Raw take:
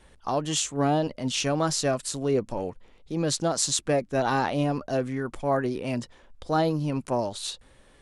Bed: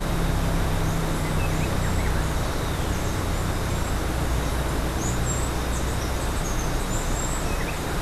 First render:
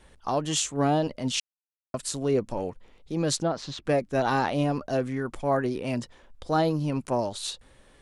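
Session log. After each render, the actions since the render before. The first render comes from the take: 1.4–1.94 mute; 3.43–3.85 air absorption 290 m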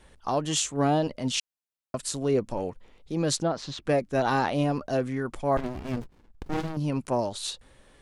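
5.57–6.77 running maximum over 65 samples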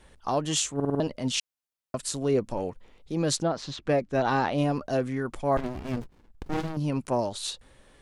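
0.75 stutter in place 0.05 s, 5 plays; 3.76–4.58 air absorption 61 m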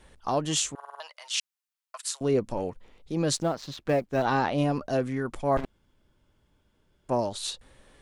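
0.75–2.21 inverse Chebyshev high-pass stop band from 270 Hz, stop band 60 dB; 3.33–4.25 G.711 law mismatch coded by A; 5.65–7.09 room tone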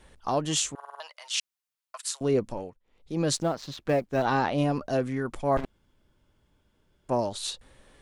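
2.43–3.2 dip -24 dB, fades 0.36 s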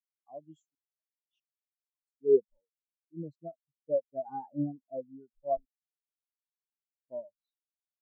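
spectral expander 4:1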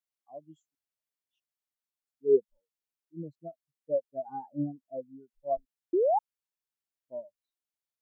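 5.93–6.19 painted sound rise 330–900 Hz -24 dBFS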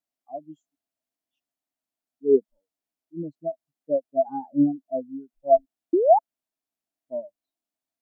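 small resonant body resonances 270/660 Hz, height 14 dB, ringing for 30 ms; wow and flutter 24 cents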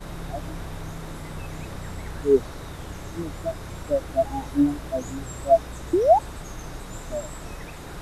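add bed -11 dB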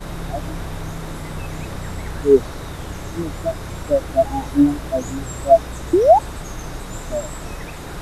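gain +6 dB; limiter -2 dBFS, peak gain reduction 1.5 dB

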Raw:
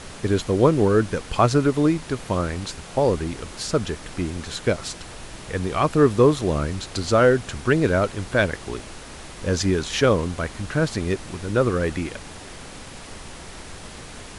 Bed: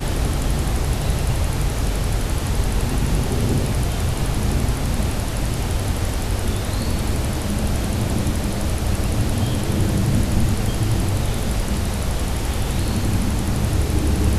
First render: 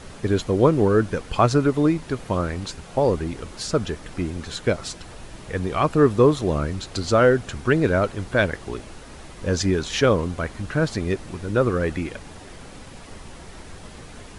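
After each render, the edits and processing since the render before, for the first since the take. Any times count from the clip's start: denoiser 6 dB, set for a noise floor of -40 dBFS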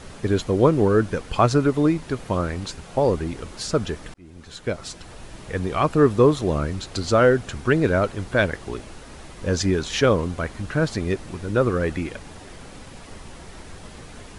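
4.14–5.57 fade in equal-power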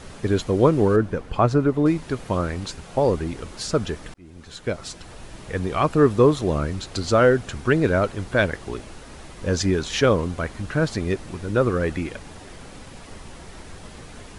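0.96–1.86 high shelf 2400 Hz -11.5 dB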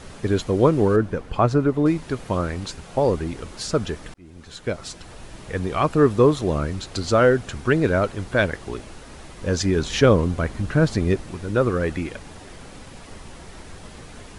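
9.76–11.21 low shelf 420 Hz +5.5 dB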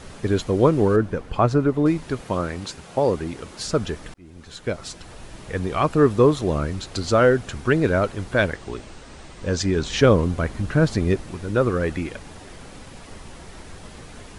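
2.21–3.59 HPF 110 Hz 6 dB/oct; 8.53–9.99 elliptic low-pass 8800 Hz, stop band 50 dB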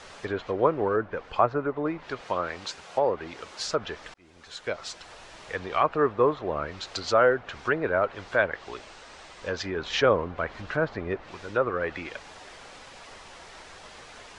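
treble ducked by the level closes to 1800 Hz, closed at -16.5 dBFS; three-band isolator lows -16 dB, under 490 Hz, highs -19 dB, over 7800 Hz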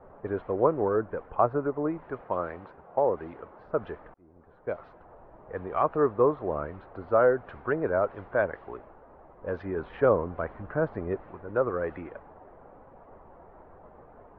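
LPF 1100 Hz 12 dB/oct; low-pass opened by the level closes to 830 Hz, open at -23 dBFS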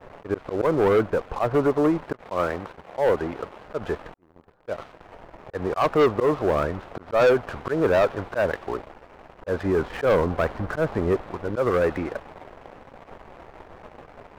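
auto swell 0.133 s; sample leveller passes 3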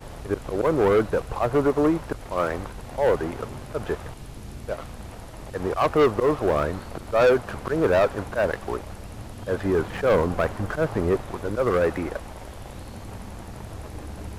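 add bed -18.5 dB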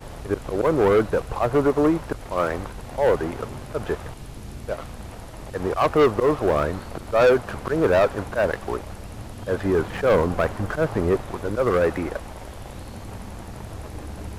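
gain +1.5 dB

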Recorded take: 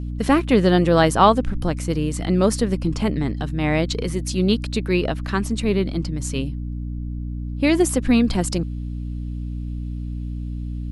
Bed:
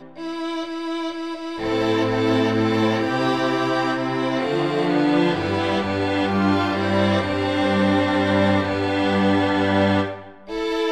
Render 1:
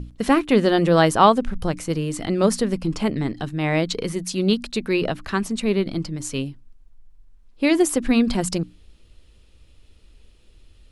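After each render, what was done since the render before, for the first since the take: notches 60/120/180/240/300 Hz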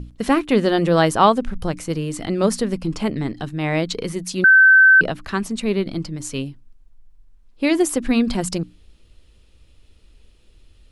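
4.44–5.01 bleep 1540 Hz -7 dBFS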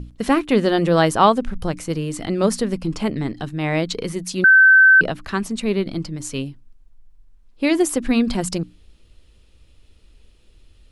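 nothing audible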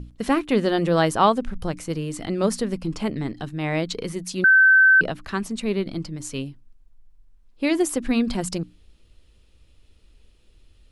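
gain -3.5 dB

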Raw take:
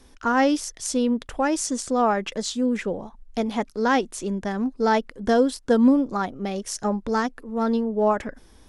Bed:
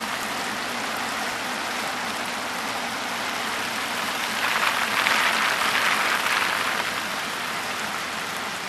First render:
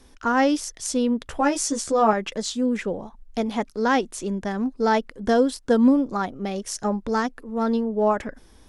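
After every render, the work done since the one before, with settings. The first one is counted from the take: 1.26–2.13 doubler 14 ms -2.5 dB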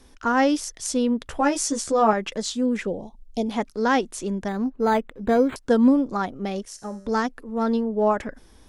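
2.87–3.49 Butterworth band-stop 1500 Hz, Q 0.72; 4.48–5.56 decimation joined by straight lines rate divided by 8×; 6.65–7.07 resonator 98 Hz, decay 0.97 s, mix 70%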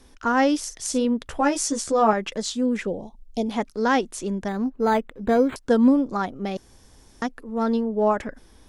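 0.58–1.05 doubler 47 ms -11.5 dB; 6.57–7.22 room tone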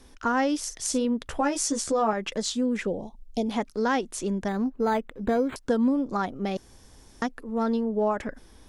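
compressor 2.5:1, threshold -23 dBFS, peak gain reduction 7.5 dB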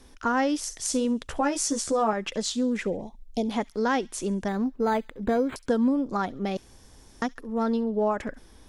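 thin delay 68 ms, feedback 42%, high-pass 2800 Hz, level -19 dB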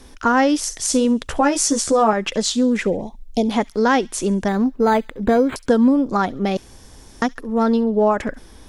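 gain +8.5 dB; limiter -3 dBFS, peak gain reduction 2 dB

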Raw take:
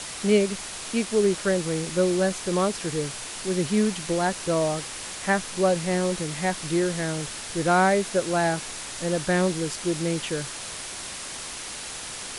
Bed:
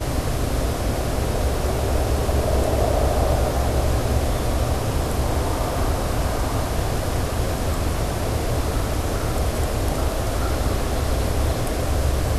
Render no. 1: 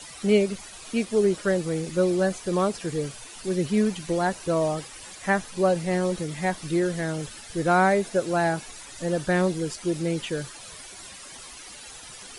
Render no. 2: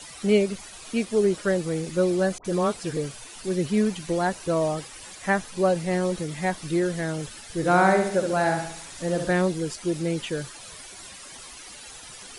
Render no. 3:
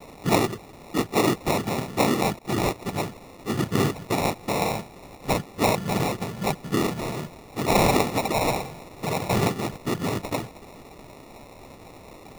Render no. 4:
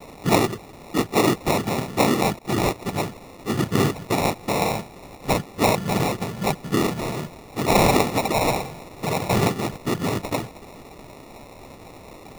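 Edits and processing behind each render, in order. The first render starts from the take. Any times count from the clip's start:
denoiser 12 dB, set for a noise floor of -36 dBFS
2.38–2.97 dispersion highs, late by 68 ms, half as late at 1200 Hz; 7.56–9.33 flutter echo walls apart 11.7 m, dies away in 0.66 s
noise vocoder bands 6; sample-and-hold 28×
gain +2.5 dB

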